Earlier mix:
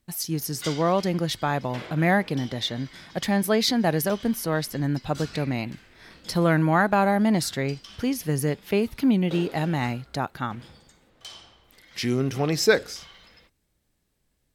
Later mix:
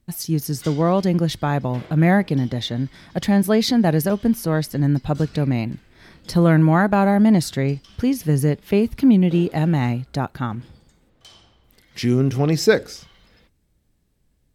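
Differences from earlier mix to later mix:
background −5.5 dB
master: add low-shelf EQ 380 Hz +9.5 dB

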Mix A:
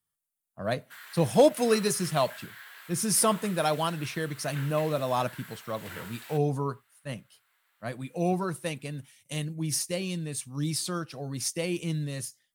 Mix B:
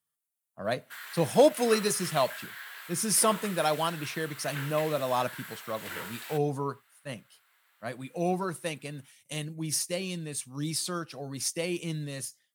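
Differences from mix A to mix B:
background +4.0 dB
master: add high-pass filter 200 Hz 6 dB per octave

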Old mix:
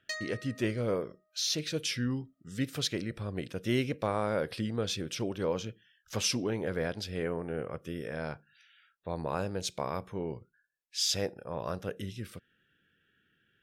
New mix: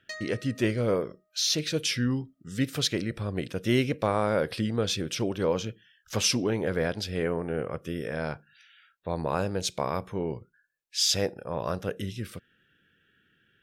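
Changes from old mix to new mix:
speech +5.0 dB
background: add spectral tilt −1.5 dB per octave

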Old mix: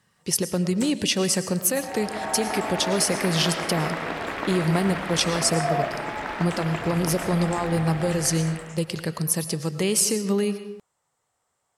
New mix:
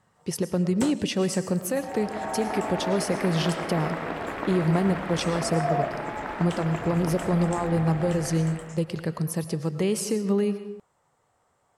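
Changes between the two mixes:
first sound +10.0 dB
second sound: add high-shelf EQ 10,000 Hz +8.5 dB
master: add high-shelf EQ 2,300 Hz −12 dB

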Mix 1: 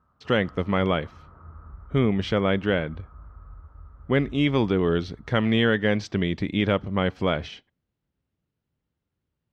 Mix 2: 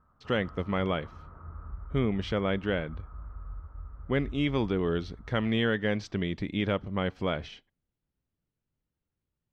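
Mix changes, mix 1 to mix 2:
speech −6.0 dB
master: remove high-pass filter 52 Hz

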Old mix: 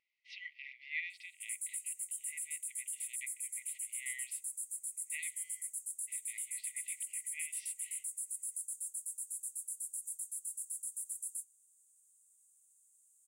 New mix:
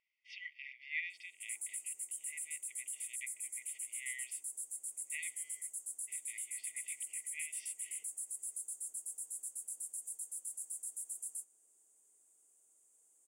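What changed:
background: remove first difference
master: add Butterworth band-reject 4,000 Hz, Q 7.2

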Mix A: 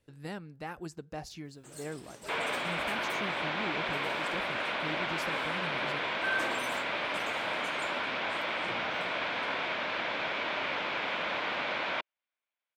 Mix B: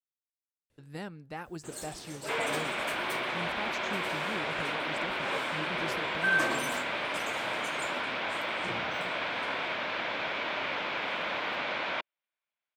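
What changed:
speech: entry +0.70 s
first sound +6.0 dB

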